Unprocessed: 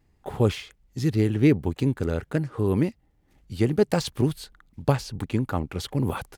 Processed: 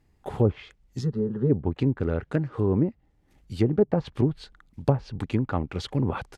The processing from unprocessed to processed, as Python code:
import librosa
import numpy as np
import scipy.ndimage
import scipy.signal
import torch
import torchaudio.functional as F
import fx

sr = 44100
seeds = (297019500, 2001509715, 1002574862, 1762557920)

y = fx.env_lowpass_down(x, sr, base_hz=760.0, full_db=-17.5)
y = fx.fixed_phaser(y, sr, hz=460.0, stages=8, at=(1.0, 1.49), fade=0.02)